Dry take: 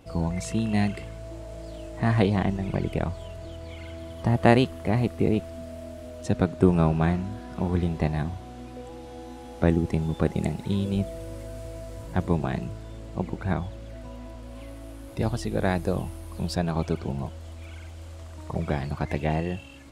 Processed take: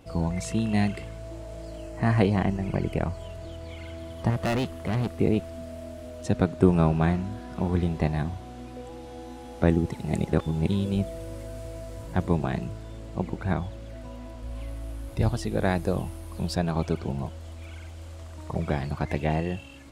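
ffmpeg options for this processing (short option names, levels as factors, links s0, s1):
-filter_complex "[0:a]asettb=1/sr,asplit=3[s0][s1][s2];[s0]atrim=end=1.674[s3];[s1]atrim=start=1.67:end=3.23,asetpts=PTS-STARTPTS,afade=t=in:d=0.004:c=qsin,afade=t=out:st=1.556:d=0.004:c=qsin,bandreject=f=3600:w=5.4[s4];[s2]atrim=start=3.226[s5];[s3][s4]acrossfade=d=0.004:c1=hsin:c2=qsin[s6];[s6][s5]acrossfade=d=0.004:c1=qsin:c2=hsin,asettb=1/sr,asplit=3[s7][s8][s9];[s7]atrim=end=4.304[s10];[s8]atrim=start=4.3:end=5.13,asetpts=PTS-STARTPTS,afade=t=in:d=0.004:c=qsin,afade=t=out:st=0.826:d=0.004:c=qsin,asoftclip=type=hard:threshold=0.075[s11];[s9]atrim=start=5.126[s12];[s10][s11]acrossfade=d=0.004:c1=hsin:c2=qsin[s13];[s13][s12]acrossfade=d=0.004:c1=qsin:c2=hsin,asplit=3[s14][s15][s16];[s14]afade=t=out:st=14.42:d=0.02[s17];[s15]asubboost=boost=2:cutoff=140,afade=t=in:st=14.42:d=0.02,afade=t=out:st=15.28:d=0.02[s18];[s16]afade=t=in:st=15.28:d=0.02[s19];[s17][s18][s19]amix=inputs=3:normalize=0,asplit=3[s20][s21][s22];[s20]atrim=end=9.922[s23];[s21]atrim=start=9.918:end=10.682,asetpts=PTS-STARTPTS,areverse[s24];[s22]atrim=start=10.678[s25];[s23][s24]acrossfade=d=0.004:c1=hsin:c2=hsin[s26];[s26][s25]acrossfade=d=0.004:c1=hsin:c2=hsin"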